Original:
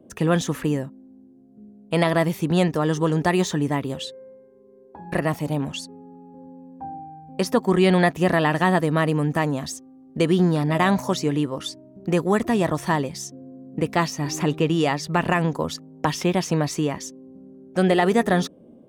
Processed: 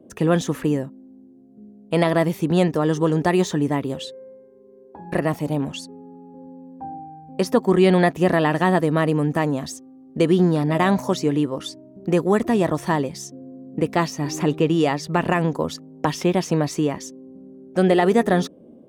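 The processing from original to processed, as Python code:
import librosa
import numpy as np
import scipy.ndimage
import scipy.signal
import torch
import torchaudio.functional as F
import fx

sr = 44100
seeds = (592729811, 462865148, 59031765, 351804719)

y = fx.peak_eq(x, sr, hz=370.0, db=4.5, octaves=2.1)
y = F.gain(torch.from_numpy(y), -1.5).numpy()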